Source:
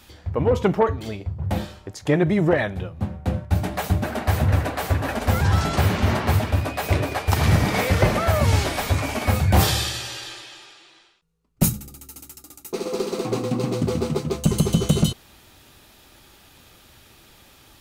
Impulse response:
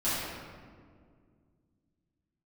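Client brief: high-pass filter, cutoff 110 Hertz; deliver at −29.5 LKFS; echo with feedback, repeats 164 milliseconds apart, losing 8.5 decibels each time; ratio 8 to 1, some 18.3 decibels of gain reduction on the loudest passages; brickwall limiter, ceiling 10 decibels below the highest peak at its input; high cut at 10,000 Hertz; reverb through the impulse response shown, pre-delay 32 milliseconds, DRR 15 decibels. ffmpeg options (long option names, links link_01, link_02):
-filter_complex "[0:a]highpass=110,lowpass=10000,acompressor=threshold=-34dB:ratio=8,alimiter=level_in=4.5dB:limit=-24dB:level=0:latency=1,volume=-4.5dB,aecho=1:1:164|328|492|656:0.376|0.143|0.0543|0.0206,asplit=2[link_01][link_02];[1:a]atrim=start_sample=2205,adelay=32[link_03];[link_02][link_03]afir=irnorm=-1:irlink=0,volume=-25dB[link_04];[link_01][link_04]amix=inputs=2:normalize=0,volume=9dB"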